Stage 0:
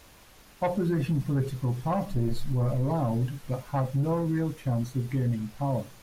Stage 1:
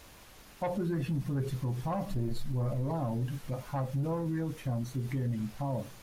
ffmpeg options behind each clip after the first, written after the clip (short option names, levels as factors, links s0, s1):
-af "alimiter=level_in=1.26:limit=0.0631:level=0:latency=1:release=90,volume=0.794"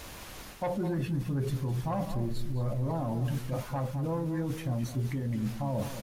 -filter_complex "[0:a]areverse,acompressor=threshold=0.0126:ratio=6,areverse,asplit=2[s0][s1];[s1]adelay=209.9,volume=0.316,highshelf=f=4000:g=-4.72[s2];[s0][s2]amix=inputs=2:normalize=0,volume=2.82"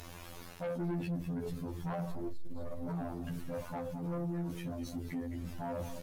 -af "afftfilt=real='hypot(re,im)*cos(PI*b)':imag='0':win_size=2048:overlap=0.75,asoftclip=type=tanh:threshold=0.0188,volume=1.41"